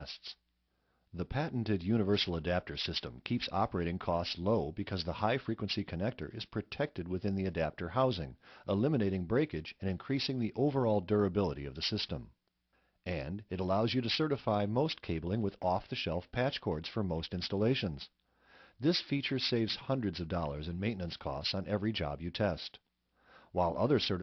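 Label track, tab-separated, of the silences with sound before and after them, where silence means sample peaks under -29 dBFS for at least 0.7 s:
12.160000	13.070000	silence
17.870000	18.850000	silence
22.540000	23.560000	silence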